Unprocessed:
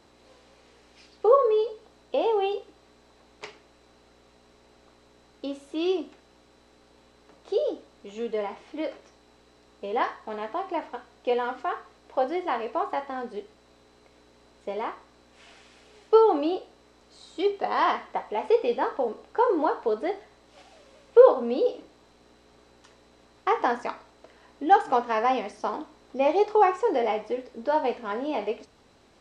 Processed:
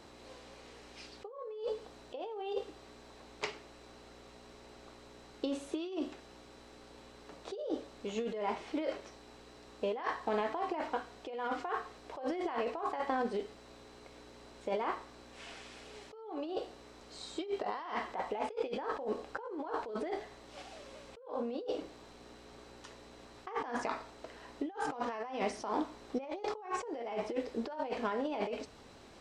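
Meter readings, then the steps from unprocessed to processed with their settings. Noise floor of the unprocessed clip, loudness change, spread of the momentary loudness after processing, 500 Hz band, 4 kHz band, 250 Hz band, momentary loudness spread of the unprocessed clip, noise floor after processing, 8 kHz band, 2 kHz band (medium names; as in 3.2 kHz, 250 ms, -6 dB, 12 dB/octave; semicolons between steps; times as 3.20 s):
-59 dBFS, -13.0 dB, 19 LU, -13.5 dB, -6.5 dB, -6.5 dB, 17 LU, -56 dBFS, no reading, -7.5 dB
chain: compressor with a negative ratio -34 dBFS, ratio -1; trim -4.5 dB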